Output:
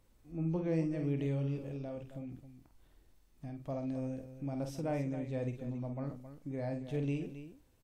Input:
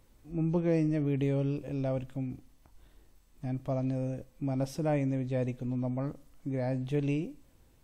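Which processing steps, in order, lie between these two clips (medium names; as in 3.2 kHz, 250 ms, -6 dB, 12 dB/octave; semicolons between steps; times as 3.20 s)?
1.70–3.67 s: compression 4:1, threshold -33 dBFS, peak gain reduction 5 dB; loudspeakers at several distances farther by 17 m -7 dB, 92 m -11 dB; trim -6.5 dB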